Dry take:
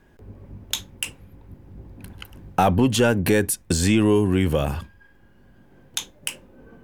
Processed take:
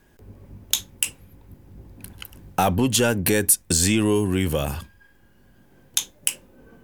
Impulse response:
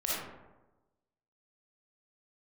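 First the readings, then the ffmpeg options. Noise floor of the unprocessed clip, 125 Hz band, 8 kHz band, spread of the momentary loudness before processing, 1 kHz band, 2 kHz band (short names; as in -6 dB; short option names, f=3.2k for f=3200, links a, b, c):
-54 dBFS, -2.5 dB, +7.0 dB, 14 LU, -2.0 dB, -0.5 dB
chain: -af "highshelf=f=4.3k:g=12,volume=-2.5dB"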